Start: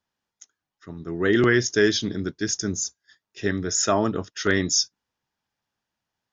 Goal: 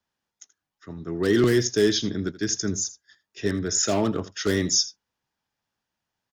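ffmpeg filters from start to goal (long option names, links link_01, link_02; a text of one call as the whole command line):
ffmpeg -i in.wav -filter_complex "[0:a]acrossover=split=170|770|2300[link_01][link_02][link_03][link_04];[link_03]aeval=exprs='0.0266*(abs(mod(val(0)/0.0266+3,4)-2)-1)':channel_layout=same[link_05];[link_01][link_02][link_05][link_04]amix=inputs=4:normalize=0,aecho=1:1:81:0.141" out.wav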